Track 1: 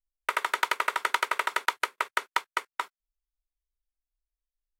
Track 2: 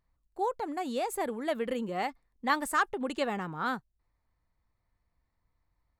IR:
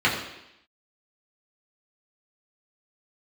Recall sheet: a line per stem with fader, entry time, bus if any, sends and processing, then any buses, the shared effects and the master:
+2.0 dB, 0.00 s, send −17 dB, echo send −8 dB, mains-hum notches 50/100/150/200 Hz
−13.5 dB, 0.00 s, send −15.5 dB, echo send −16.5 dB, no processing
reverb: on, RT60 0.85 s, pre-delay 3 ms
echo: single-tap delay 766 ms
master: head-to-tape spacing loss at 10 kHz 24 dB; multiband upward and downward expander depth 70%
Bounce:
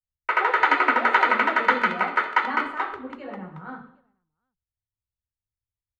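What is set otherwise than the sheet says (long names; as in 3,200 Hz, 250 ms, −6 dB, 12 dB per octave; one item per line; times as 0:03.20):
stem 2 −13.5 dB → −6.5 dB
reverb return +7.0 dB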